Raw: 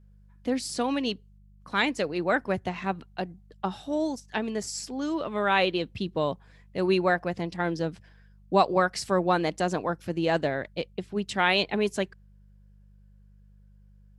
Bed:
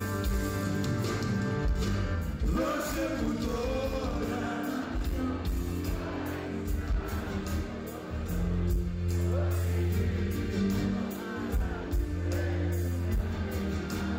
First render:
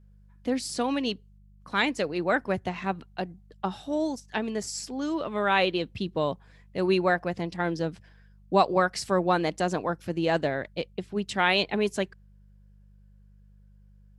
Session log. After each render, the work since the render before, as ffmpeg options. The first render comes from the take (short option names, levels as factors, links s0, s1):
-af anull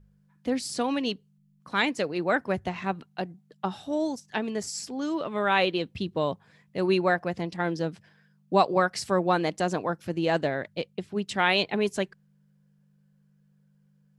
-af "bandreject=f=50:t=h:w=4,bandreject=f=100:t=h:w=4"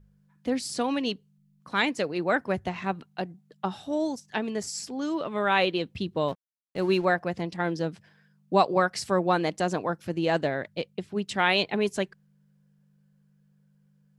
-filter_complex "[0:a]asettb=1/sr,asplit=3[s0][s1][s2];[s0]atrim=end=6.284[s3];[s1]atrim=start=6.28:end=7.05,asetpts=PTS-STARTPTS,afade=t=in:d=0.004:c=qsin,afade=t=out:st=0.766:d=0.004:c=qsin,aeval=exprs='sgn(val(0))*max(abs(val(0))-0.00501,0)':c=same[s4];[s2]atrim=start=7.046[s5];[s3][s4]acrossfade=d=0.004:c1=hsin:c2=qsin[s6];[s6][s5]acrossfade=d=0.004:c1=qsin:c2=hsin"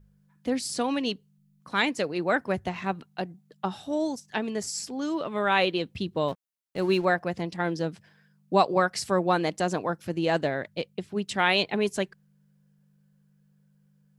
-af "highshelf=f=8000:g=4.5"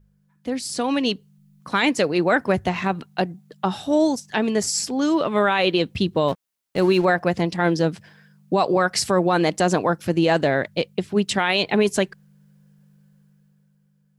-af "alimiter=limit=0.119:level=0:latency=1:release=53,dynaudnorm=f=110:g=17:m=2.99"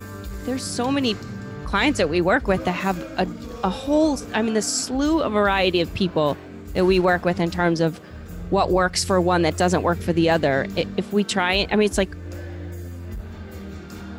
-filter_complex "[1:a]volume=0.668[s0];[0:a][s0]amix=inputs=2:normalize=0"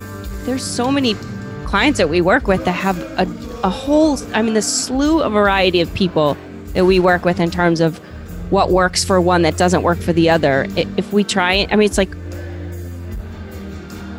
-af "volume=1.88,alimiter=limit=0.708:level=0:latency=1"